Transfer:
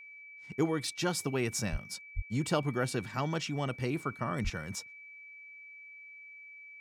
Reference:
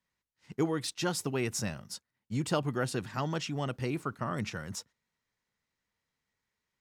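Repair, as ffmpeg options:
-filter_complex "[0:a]bandreject=f=2.3k:w=30,asplit=3[a][b][c];[a]afade=t=out:st=1.71:d=0.02[d];[b]highpass=f=140:w=0.5412,highpass=f=140:w=1.3066,afade=t=in:st=1.71:d=0.02,afade=t=out:st=1.83:d=0.02[e];[c]afade=t=in:st=1.83:d=0.02[f];[d][e][f]amix=inputs=3:normalize=0,asplit=3[g][h][i];[g]afade=t=out:st=2.15:d=0.02[j];[h]highpass=f=140:w=0.5412,highpass=f=140:w=1.3066,afade=t=in:st=2.15:d=0.02,afade=t=out:st=2.27:d=0.02[k];[i]afade=t=in:st=2.27:d=0.02[l];[j][k][l]amix=inputs=3:normalize=0,asplit=3[m][n][o];[m]afade=t=out:st=4.43:d=0.02[p];[n]highpass=f=140:w=0.5412,highpass=f=140:w=1.3066,afade=t=in:st=4.43:d=0.02,afade=t=out:st=4.55:d=0.02[q];[o]afade=t=in:st=4.55:d=0.02[r];[p][q][r]amix=inputs=3:normalize=0"

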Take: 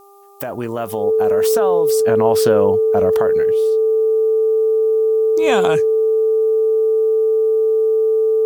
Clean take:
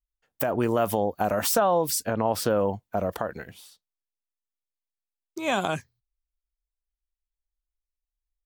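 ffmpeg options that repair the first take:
-af "bandreject=f=398.9:t=h:w=4,bandreject=f=797.8:t=h:w=4,bandreject=f=1.1967k:t=h:w=4,bandreject=f=440:w=30,agate=range=-21dB:threshold=-14dB,asetnsamples=n=441:p=0,asendcmd='1.99 volume volume -6.5dB',volume=0dB"

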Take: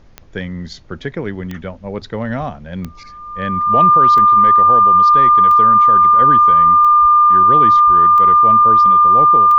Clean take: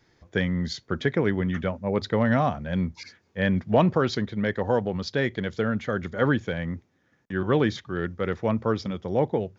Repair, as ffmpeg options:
-filter_complex "[0:a]adeclick=t=4,bandreject=f=1.2k:w=30,asplit=3[a][b][c];[a]afade=t=out:st=2.39:d=0.02[d];[b]highpass=f=140:w=0.5412,highpass=f=140:w=1.3066,afade=t=in:st=2.39:d=0.02,afade=t=out:st=2.51:d=0.02[e];[c]afade=t=in:st=2.51:d=0.02[f];[d][e][f]amix=inputs=3:normalize=0,asplit=3[g][h][i];[g]afade=t=out:st=7.01:d=0.02[j];[h]highpass=f=140:w=0.5412,highpass=f=140:w=1.3066,afade=t=in:st=7.01:d=0.02,afade=t=out:st=7.13:d=0.02[k];[i]afade=t=in:st=7.13:d=0.02[l];[j][k][l]amix=inputs=3:normalize=0,asplit=3[m][n][o];[m]afade=t=out:st=7.86:d=0.02[p];[n]highpass=f=140:w=0.5412,highpass=f=140:w=1.3066,afade=t=in:st=7.86:d=0.02,afade=t=out:st=7.98:d=0.02[q];[o]afade=t=in:st=7.98:d=0.02[r];[p][q][r]amix=inputs=3:normalize=0,agate=range=-21dB:threshold=-28dB"

